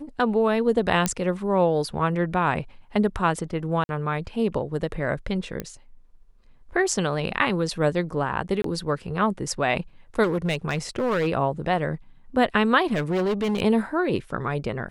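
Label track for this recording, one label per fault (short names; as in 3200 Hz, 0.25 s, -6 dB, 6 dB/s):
1.060000	1.060000	pop -7 dBFS
3.840000	3.890000	gap 51 ms
5.600000	5.600000	pop -15 dBFS
8.620000	8.640000	gap 23 ms
10.230000	11.280000	clipped -19.5 dBFS
12.930000	13.600000	clipped -20.5 dBFS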